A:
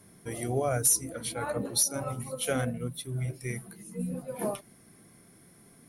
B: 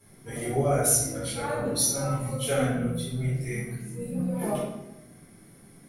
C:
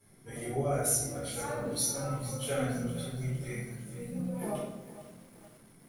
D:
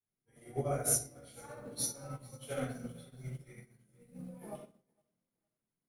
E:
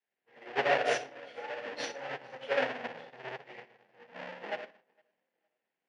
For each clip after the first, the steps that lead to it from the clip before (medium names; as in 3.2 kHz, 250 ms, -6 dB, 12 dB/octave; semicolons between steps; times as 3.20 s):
simulated room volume 320 m³, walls mixed, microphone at 4.1 m; trim -7.5 dB
bit-crushed delay 460 ms, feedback 55%, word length 7-bit, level -13.5 dB; trim -6.5 dB
upward expansion 2.5:1, over -49 dBFS
square wave that keeps the level; cabinet simulation 490–4100 Hz, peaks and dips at 500 Hz +5 dB, 780 Hz +6 dB, 1.2 kHz -6 dB, 1.8 kHz +9 dB, 2.7 kHz +4 dB, 3.9 kHz -6 dB; trim +4 dB